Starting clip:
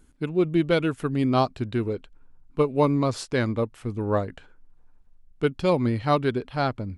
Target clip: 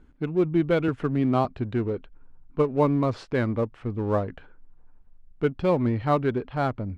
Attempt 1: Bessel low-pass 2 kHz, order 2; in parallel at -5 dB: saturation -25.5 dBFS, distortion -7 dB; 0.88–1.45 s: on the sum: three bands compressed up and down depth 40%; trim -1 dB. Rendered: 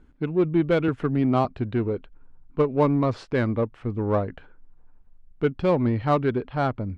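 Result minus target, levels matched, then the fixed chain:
saturation: distortion -5 dB
Bessel low-pass 2 kHz, order 2; in parallel at -5 dB: saturation -36.5 dBFS, distortion -2 dB; 0.88–1.45 s: on the sum: three bands compressed up and down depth 40%; trim -1 dB

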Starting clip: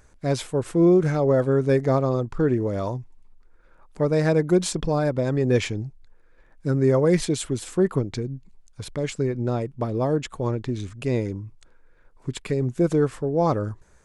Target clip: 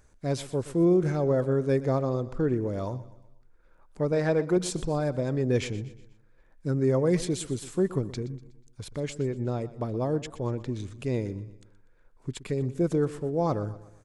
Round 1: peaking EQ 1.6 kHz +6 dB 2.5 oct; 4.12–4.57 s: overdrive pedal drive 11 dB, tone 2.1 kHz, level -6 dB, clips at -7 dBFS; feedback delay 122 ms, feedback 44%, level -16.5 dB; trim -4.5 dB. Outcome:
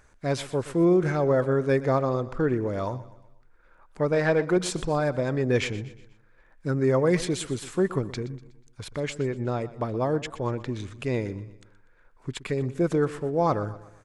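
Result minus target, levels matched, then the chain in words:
2 kHz band +6.0 dB
peaking EQ 1.6 kHz -2.5 dB 2.5 oct; 4.12–4.57 s: overdrive pedal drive 11 dB, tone 2.1 kHz, level -6 dB, clips at -7 dBFS; feedback delay 122 ms, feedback 44%, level -16.5 dB; trim -4.5 dB

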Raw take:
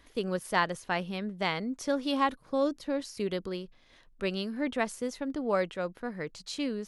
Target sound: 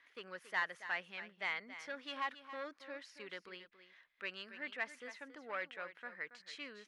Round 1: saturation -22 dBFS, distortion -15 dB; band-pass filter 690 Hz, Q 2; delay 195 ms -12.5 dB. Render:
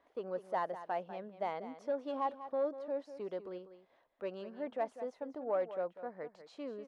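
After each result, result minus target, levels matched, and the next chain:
2 kHz band -16.0 dB; echo 83 ms early
saturation -22 dBFS, distortion -15 dB; band-pass filter 1.9 kHz, Q 2; delay 195 ms -12.5 dB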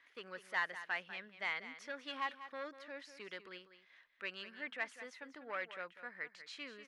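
echo 83 ms early
saturation -22 dBFS, distortion -15 dB; band-pass filter 1.9 kHz, Q 2; delay 278 ms -12.5 dB

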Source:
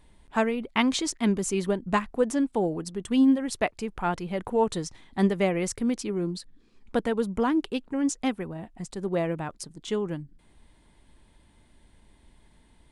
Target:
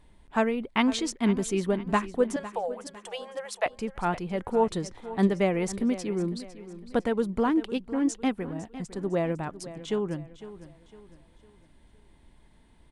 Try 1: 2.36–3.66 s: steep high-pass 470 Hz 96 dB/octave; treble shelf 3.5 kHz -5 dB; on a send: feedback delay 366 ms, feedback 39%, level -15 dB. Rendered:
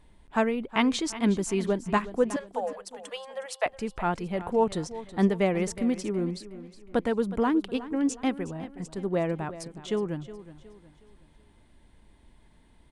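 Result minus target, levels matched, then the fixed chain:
echo 139 ms early
2.36–3.66 s: steep high-pass 470 Hz 96 dB/octave; treble shelf 3.5 kHz -5 dB; on a send: feedback delay 505 ms, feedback 39%, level -15 dB

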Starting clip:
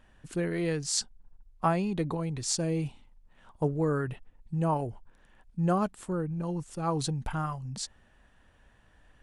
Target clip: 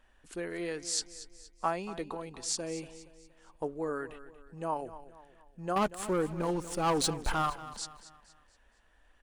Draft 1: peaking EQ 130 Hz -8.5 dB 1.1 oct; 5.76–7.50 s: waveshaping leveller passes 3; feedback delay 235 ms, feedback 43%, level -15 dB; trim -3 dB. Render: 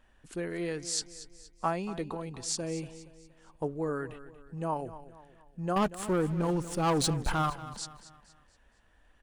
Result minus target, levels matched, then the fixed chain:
125 Hz band +5.5 dB
peaking EQ 130 Hz -20.5 dB 1.1 oct; 5.76–7.50 s: waveshaping leveller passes 3; feedback delay 235 ms, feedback 43%, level -15 dB; trim -3 dB

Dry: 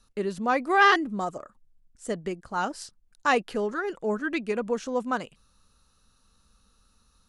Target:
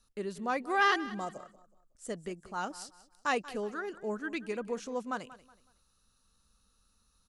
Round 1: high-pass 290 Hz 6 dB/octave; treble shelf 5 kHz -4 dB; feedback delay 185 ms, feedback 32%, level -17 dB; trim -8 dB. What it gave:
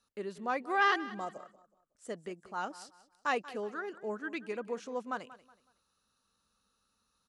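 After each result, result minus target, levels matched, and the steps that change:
8 kHz band -5.0 dB; 250 Hz band -2.0 dB
change: treble shelf 5 kHz +5.5 dB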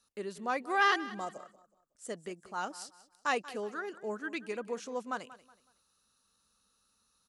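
250 Hz band -2.5 dB
remove: high-pass 290 Hz 6 dB/octave

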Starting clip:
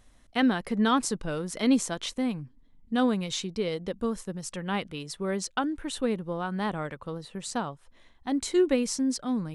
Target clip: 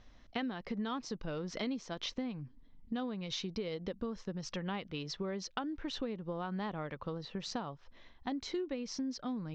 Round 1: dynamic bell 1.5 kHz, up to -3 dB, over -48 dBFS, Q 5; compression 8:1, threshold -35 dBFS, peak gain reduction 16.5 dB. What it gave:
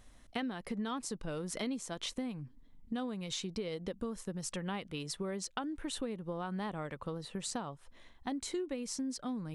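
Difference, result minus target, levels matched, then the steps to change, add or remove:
8 kHz band +7.5 dB
add after dynamic bell: steep low-pass 5.9 kHz 48 dB/octave

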